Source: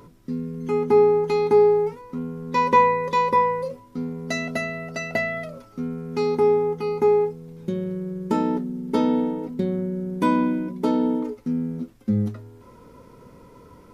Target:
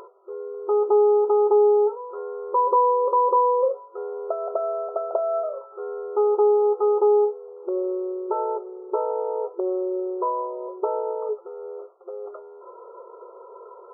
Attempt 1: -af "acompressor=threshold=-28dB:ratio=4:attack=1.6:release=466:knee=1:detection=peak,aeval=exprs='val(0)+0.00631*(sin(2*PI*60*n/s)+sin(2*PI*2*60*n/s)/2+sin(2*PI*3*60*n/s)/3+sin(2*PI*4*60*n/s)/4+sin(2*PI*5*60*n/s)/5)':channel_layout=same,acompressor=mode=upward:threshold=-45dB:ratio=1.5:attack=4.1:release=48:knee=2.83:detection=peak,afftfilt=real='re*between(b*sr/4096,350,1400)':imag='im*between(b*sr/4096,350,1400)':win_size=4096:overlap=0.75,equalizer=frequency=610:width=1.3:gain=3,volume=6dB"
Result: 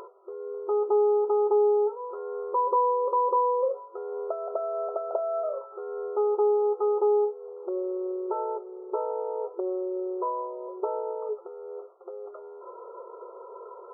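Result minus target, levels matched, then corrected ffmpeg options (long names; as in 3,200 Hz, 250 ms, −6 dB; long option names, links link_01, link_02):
downward compressor: peak gain reduction +5 dB
-af "acompressor=threshold=-21.5dB:ratio=4:attack=1.6:release=466:knee=1:detection=peak,aeval=exprs='val(0)+0.00631*(sin(2*PI*60*n/s)+sin(2*PI*2*60*n/s)/2+sin(2*PI*3*60*n/s)/3+sin(2*PI*4*60*n/s)/4+sin(2*PI*5*60*n/s)/5)':channel_layout=same,acompressor=mode=upward:threshold=-45dB:ratio=1.5:attack=4.1:release=48:knee=2.83:detection=peak,afftfilt=real='re*between(b*sr/4096,350,1400)':imag='im*between(b*sr/4096,350,1400)':win_size=4096:overlap=0.75,equalizer=frequency=610:width=1.3:gain=3,volume=6dB"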